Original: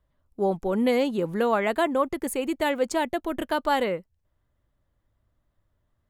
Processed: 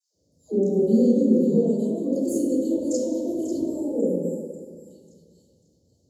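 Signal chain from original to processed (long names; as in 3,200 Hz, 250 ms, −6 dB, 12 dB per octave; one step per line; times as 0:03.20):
meter weighting curve D
delay with a high-pass on its return 542 ms, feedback 34%, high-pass 3,100 Hz, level −13 dB
time-frequency box erased 0:03.55–0:04.87, 1,600–7,000 Hz
downward compressor 10 to 1, threshold −32 dBFS, peak gain reduction 15.5 dB
noise in a band 430–4,900 Hz −75 dBFS
speech leveller within 3 dB 2 s
elliptic band-stop filter 500–6,300 Hz, stop band 60 dB
mains-hum notches 50/100/150/200/250 Hz
all-pass dispersion lows, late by 148 ms, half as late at 830 Hz
convolution reverb RT60 1.9 s, pre-delay 3 ms, DRR −5 dB
dynamic equaliser 250 Hz, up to +6 dB, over −36 dBFS, Q 3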